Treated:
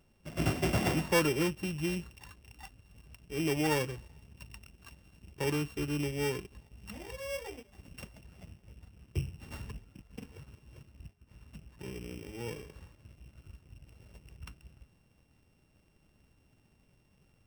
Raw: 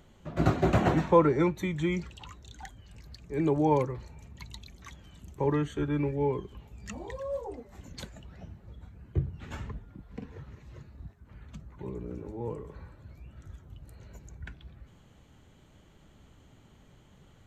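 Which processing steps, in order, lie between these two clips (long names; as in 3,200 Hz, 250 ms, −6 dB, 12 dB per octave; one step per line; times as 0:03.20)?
samples sorted by size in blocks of 16 samples
leveller curve on the samples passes 1
level −8 dB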